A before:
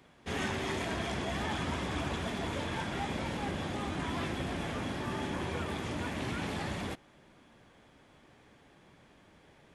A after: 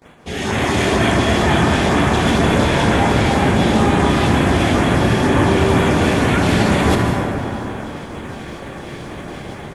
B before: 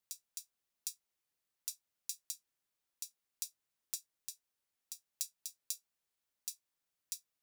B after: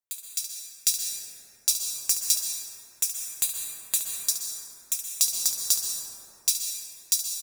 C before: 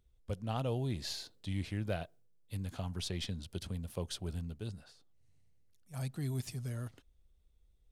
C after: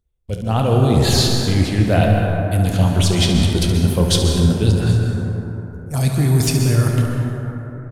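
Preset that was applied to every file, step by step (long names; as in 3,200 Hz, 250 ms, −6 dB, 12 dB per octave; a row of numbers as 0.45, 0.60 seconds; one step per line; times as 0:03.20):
noise gate −60 dBFS, range −22 dB
reversed playback
downward compressor 6 to 1, threshold −43 dBFS
reversed playback
auto-filter notch sine 2.1 Hz 970–5,600 Hz
on a send: ambience of single reflections 28 ms −12 dB, 54 ms −17 dB, 71 ms −10 dB
on the sum: automatic gain control gain up to 8.5 dB
dense smooth reverb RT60 3.7 s, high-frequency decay 0.3×, pre-delay 110 ms, DRR 1 dB
normalise the peak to −2 dBFS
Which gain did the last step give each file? +19.5, +15.5, +20.5 decibels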